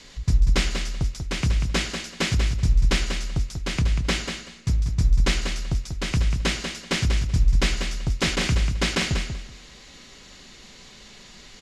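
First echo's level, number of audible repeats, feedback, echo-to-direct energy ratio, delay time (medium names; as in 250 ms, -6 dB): -7.0 dB, 2, 18%, -7.0 dB, 190 ms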